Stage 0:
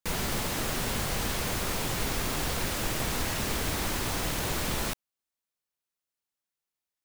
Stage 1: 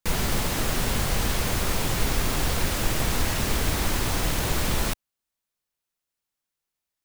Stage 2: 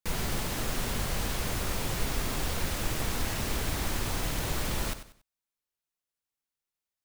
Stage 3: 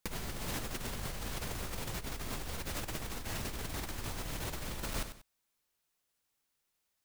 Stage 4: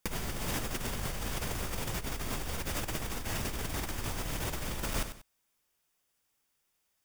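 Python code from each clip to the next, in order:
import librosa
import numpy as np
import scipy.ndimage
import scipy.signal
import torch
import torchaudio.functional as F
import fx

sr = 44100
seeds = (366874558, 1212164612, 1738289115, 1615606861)

y1 = fx.low_shelf(x, sr, hz=90.0, db=7.0)
y1 = y1 * librosa.db_to_amplitude(3.5)
y2 = fx.echo_feedback(y1, sr, ms=94, feedback_pct=31, wet_db=-12.0)
y2 = y2 * librosa.db_to_amplitude(-6.5)
y3 = fx.over_compress(y2, sr, threshold_db=-39.0, ratio=-1.0)
y4 = fx.notch(y3, sr, hz=4100.0, q=10.0)
y4 = y4 * librosa.db_to_amplitude(4.0)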